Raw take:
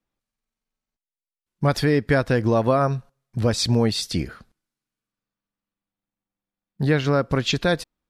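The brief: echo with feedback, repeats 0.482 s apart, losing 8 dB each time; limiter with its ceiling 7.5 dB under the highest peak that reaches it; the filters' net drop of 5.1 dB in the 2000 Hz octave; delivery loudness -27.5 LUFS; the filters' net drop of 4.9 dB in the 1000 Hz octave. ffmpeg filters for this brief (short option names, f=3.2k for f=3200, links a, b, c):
-af "equalizer=f=1k:t=o:g=-6,equalizer=f=2k:t=o:g=-4.5,alimiter=limit=-15.5dB:level=0:latency=1,aecho=1:1:482|964|1446|1928|2410:0.398|0.159|0.0637|0.0255|0.0102,volume=-1dB"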